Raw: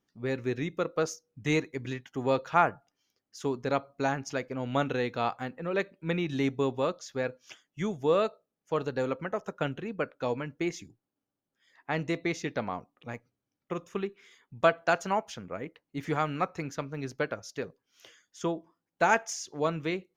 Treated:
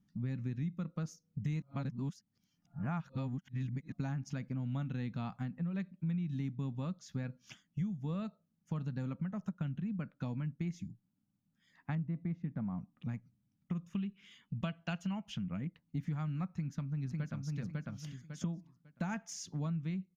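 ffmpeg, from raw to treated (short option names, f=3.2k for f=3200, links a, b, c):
-filter_complex "[0:a]asettb=1/sr,asplit=3[a][b][c];[a]atrim=end=11.954[d];[b]atrim=start=11.95:end=12.78,asetpts=PTS-STARTPTS,afade=t=in:d=0.004:c=qsin,afade=t=out:st=0.826:d=0.004:c=qsin,lowpass=1.4k[e];[c]atrim=start=12.776[f];[d][e]acrossfade=d=0.004:c1=hsin:c2=qsin[g];[g][f]acrossfade=d=0.004:c1=qsin:c2=hsin,asettb=1/sr,asplit=3[h][i][j];[h]atrim=end=13.934[k];[i]atrim=start=13.93:end=15.61,asetpts=PTS-STARTPTS,afade=t=in:d=0.004:c=qsin,afade=t=out:st=1.676:d=0.004:c=qsin,equalizer=f=2.9k:t=o:w=0.45:g=13[l];[j]atrim=start=15.606[m];[k][l]acrossfade=d=0.004:c1=hsin:c2=qsin[n];[n][m]acrossfade=d=0.004:c1=qsin:c2=hsin,asplit=2[o][p];[p]afade=t=in:st=16.49:d=0.01,afade=t=out:st=17.57:d=0.01,aecho=0:1:550|1100|1650:0.562341|0.112468|0.0224937[q];[o][q]amix=inputs=2:normalize=0,asplit=3[r][s][t];[r]atrim=end=1.622[u];[s]atrim=start=1.618:end=3.922,asetpts=PTS-STARTPTS,areverse[v];[t]atrim=start=3.918[w];[u][v]acrossfade=d=0.004:c1=hsin:c2=hsin[x];[x][w]acrossfade=d=0.004:c1=hsin:c2=hsin,lowshelf=f=280:t=q:w=3:g=13.5,acompressor=threshold=-31dB:ratio=5,volume=-5dB"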